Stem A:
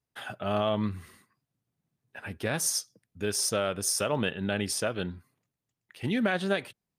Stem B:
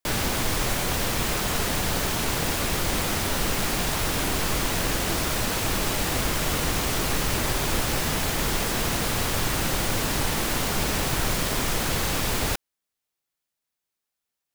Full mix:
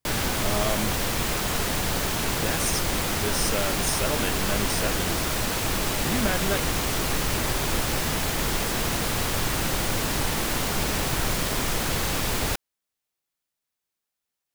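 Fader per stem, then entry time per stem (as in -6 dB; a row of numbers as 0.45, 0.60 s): -1.0, -0.5 dB; 0.00, 0.00 s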